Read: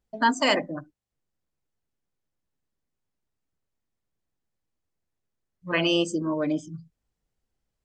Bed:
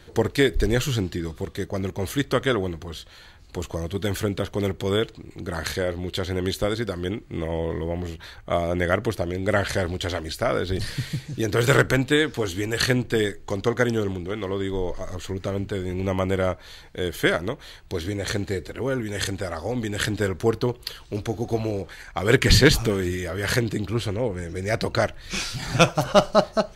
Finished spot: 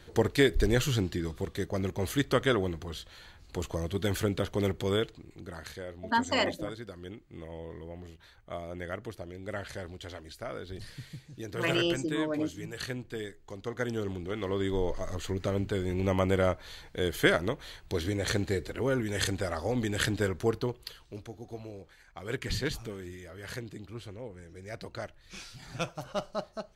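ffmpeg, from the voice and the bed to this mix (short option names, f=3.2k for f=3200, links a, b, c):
-filter_complex "[0:a]adelay=5900,volume=-5.5dB[a];[1:a]volume=8.5dB,afade=t=out:st=4.74:d=0.91:silence=0.266073,afade=t=in:st=13.62:d=1.07:silence=0.237137,afade=t=out:st=19.86:d=1.46:silence=0.199526[b];[a][b]amix=inputs=2:normalize=0"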